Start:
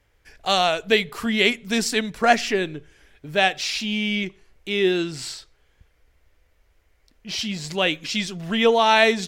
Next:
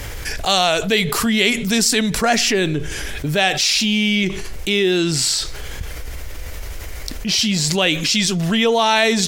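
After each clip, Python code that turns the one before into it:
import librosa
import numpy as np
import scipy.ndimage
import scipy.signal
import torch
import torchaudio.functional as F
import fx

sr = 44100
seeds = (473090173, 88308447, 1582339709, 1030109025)

y = fx.bass_treble(x, sr, bass_db=3, treble_db=8)
y = fx.env_flatten(y, sr, amount_pct=70)
y = F.gain(torch.from_numpy(y), -2.5).numpy()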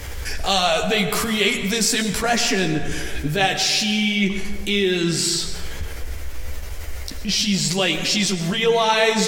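y = fx.chorus_voices(x, sr, voices=6, hz=0.72, base_ms=13, depth_ms=2.6, mix_pct=40)
y = fx.rev_plate(y, sr, seeds[0], rt60_s=1.7, hf_ratio=0.45, predelay_ms=90, drr_db=8.0)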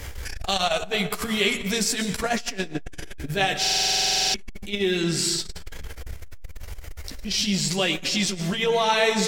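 y = fx.buffer_glitch(x, sr, at_s=(3.6,), block=2048, repeats=15)
y = fx.transformer_sat(y, sr, knee_hz=280.0)
y = F.gain(torch.from_numpy(y), -3.0).numpy()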